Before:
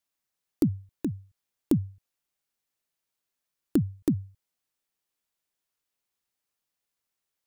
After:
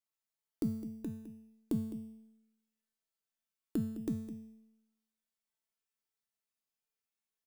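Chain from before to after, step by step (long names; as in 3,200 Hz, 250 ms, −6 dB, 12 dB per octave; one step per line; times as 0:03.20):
tuned comb filter 220 Hz, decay 0.92 s, mix 90%
on a send: single-tap delay 209 ms −13.5 dB
on the sum: level +6.5 dB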